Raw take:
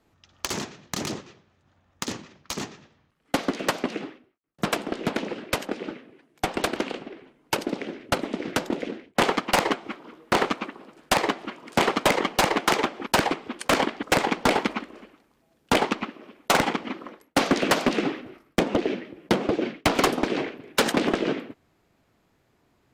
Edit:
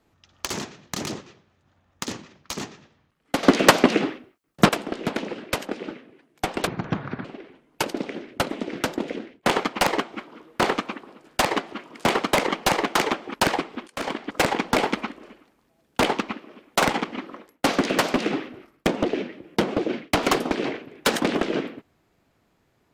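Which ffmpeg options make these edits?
-filter_complex "[0:a]asplit=6[a][b][c][d][e][f];[a]atrim=end=3.432[g];[b]atrim=start=3.428:end=4.692,asetpts=PTS-STARTPTS,volume=11dB[h];[c]atrim=start=4.688:end=6.674[i];[d]atrim=start=6.67:end=6.97,asetpts=PTS-STARTPTS,asetrate=22932,aresample=44100,atrim=end_sample=25442,asetpts=PTS-STARTPTS[j];[e]atrim=start=6.966:end=13.6,asetpts=PTS-STARTPTS,afade=t=out:st=6.63:d=0.004:c=hsin:silence=0.105925[k];[f]atrim=start=13.6,asetpts=PTS-STARTPTS,afade=t=in:d=0.45:silence=0.105925[l];[g][h]acrossfade=d=0.004:c1=hsin:c2=hsin[m];[m][i]acrossfade=d=0.004:c1=hsin:c2=hsin[n];[n][j]acrossfade=d=0.004:c1=hsin:c2=hsin[o];[k][l]concat=n=2:v=0:a=1[p];[o][p]acrossfade=d=0.004:c1=hsin:c2=hsin"

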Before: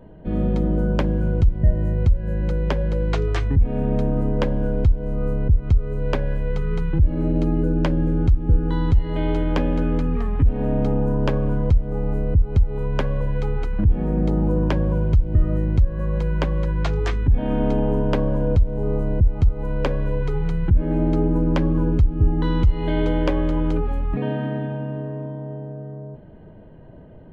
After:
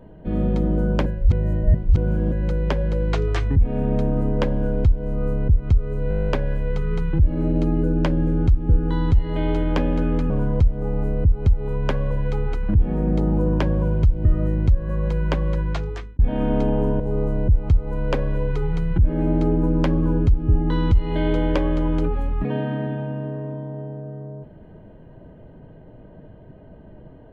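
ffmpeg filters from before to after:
-filter_complex "[0:a]asplit=16[a][b][c][d][e][f][g][h][i][j][k][l][m][n][o][p];[a]atrim=end=1.062[q];[b]atrim=start=1.058:end=2.322,asetpts=PTS-STARTPTS,areverse[r];[c]atrim=start=2.318:end=6.112[s];[d]atrim=start=6.088:end=6.112[t];[e]atrim=start=6.088:end=6.112[u];[f]atrim=start=6.088:end=6.112[v];[g]atrim=start=6.088:end=6.112[w];[h]atrim=start=6.088:end=6.112[x];[i]atrim=start=6.088:end=6.112[y];[j]atrim=start=6.088:end=6.112[z];[k]atrim=start=6.088:end=6.112[aa];[l]atrim=start=6.088:end=6.112[ab];[m]atrim=start=6.088:end=10.102[ac];[n]atrim=start=11.398:end=17.29,asetpts=PTS-STARTPTS,afade=t=out:st=5.282:d=0.61[ad];[o]atrim=start=17.29:end=18.102,asetpts=PTS-STARTPTS,afade=t=in:d=0.004:c=hsin[ae];[p]atrim=start=18.718[af];[q][r]acrossfade=d=0.004:c1=hsin:c2=hsin[ag];[ag][s]acrossfade=d=0.004:c1=hsin:c2=hsin[ah];[ah][t]acrossfade=d=0.004:c1=hsin:c2=hsin[ai];[ai][u]acrossfade=d=0.004:c1=hsin:c2=hsin[aj];[aj][v]acrossfade=d=0.004:c1=hsin:c2=hsin[ak];[ak][w]acrossfade=d=0.004:c1=hsin:c2=hsin[al];[al][x]acrossfade=d=0.004:c1=hsin:c2=hsin[am];[am][y]acrossfade=d=0.004:c1=hsin:c2=hsin[an];[an][z]acrossfade=d=0.004:c1=hsin:c2=hsin[ao];[ao][aa]acrossfade=d=0.004:c1=hsin:c2=hsin[ap];[ap][ab]acrossfade=d=0.004:c1=hsin:c2=hsin[aq];[aq][ac]acrossfade=d=0.004:c1=hsin:c2=hsin[ar];[ad][ae]concat=n=2:v=0:a=1[as];[ar][as]acrossfade=d=0.004:c1=hsin:c2=hsin[at];[at][af]acrossfade=d=0.004:c1=hsin:c2=hsin"

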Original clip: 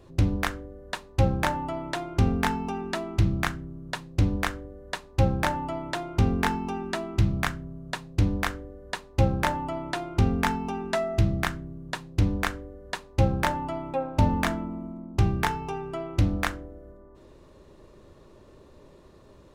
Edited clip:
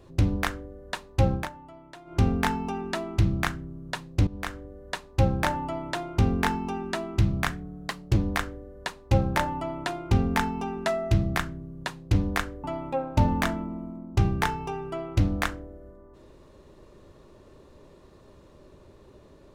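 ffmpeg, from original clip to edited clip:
-filter_complex "[0:a]asplit=7[a][b][c][d][e][f][g];[a]atrim=end=1.49,asetpts=PTS-STARTPTS,afade=t=out:st=1.34:d=0.15:silence=0.16788[h];[b]atrim=start=1.49:end=2.05,asetpts=PTS-STARTPTS,volume=-15.5dB[i];[c]atrim=start=2.05:end=4.27,asetpts=PTS-STARTPTS,afade=t=in:d=0.15:silence=0.16788,afade=t=out:st=2.216:d=0.004:c=hsin:silence=0.149624[j];[d]atrim=start=4.27:end=7.514,asetpts=PTS-STARTPTS,afade=t=in:d=0.63:c=qsin:silence=0.149624[k];[e]atrim=start=7.51:end=8.24,asetpts=PTS-STARTPTS,asetrate=48951,aresample=44100[l];[f]atrim=start=8.236:end=12.712[m];[g]atrim=start=13.648[n];[h][i][j][k]concat=n=4:v=0:a=1[o];[o][l]acrossfade=d=0.004:c1=hsin:c2=hsin[p];[p][m]acrossfade=d=0.004:c1=hsin:c2=hsin[q];[q][n]acrossfade=d=0.004:c1=hsin:c2=hsin"

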